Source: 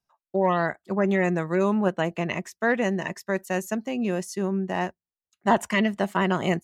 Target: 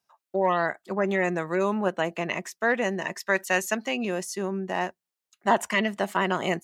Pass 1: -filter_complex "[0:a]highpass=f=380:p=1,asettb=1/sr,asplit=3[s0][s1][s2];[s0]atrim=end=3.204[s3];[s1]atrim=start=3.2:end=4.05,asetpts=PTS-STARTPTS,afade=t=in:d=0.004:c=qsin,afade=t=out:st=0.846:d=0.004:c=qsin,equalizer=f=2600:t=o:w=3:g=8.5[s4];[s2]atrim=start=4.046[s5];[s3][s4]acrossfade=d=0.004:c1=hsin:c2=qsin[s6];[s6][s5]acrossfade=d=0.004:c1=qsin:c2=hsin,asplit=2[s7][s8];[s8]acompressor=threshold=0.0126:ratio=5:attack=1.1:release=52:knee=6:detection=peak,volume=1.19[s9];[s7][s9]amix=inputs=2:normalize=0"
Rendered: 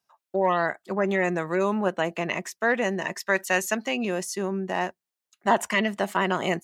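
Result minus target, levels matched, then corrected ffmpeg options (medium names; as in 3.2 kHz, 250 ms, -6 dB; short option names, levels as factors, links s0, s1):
compression: peak gain reduction -6.5 dB
-filter_complex "[0:a]highpass=f=380:p=1,asettb=1/sr,asplit=3[s0][s1][s2];[s0]atrim=end=3.204[s3];[s1]atrim=start=3.2:end=4.05,asetpts=PTS-STARTPTS,afade=t=in:d=0.004:c=qsin,afade=t=out:st=0.846:d=0.004:c=qsin,equalizer=f=2600:t=o:w=3:g=8.5[s4];[s2]atrim=start=4.046[s5];[s3][s4]acrossfade=d=0.004:c1=hsin:c2=qsin[s6];[s6][s5]acrossfade=d=0.004:c1=qsin:c2=hsin,asplit=2[s7][s8];[s8]acompressor=threshold=0.00501:ratio=5:attack=1.1:release=52:knee=6:detection=peak,volume=1.19[s9];[s7][s9]amix=inputs=2:normalize=0"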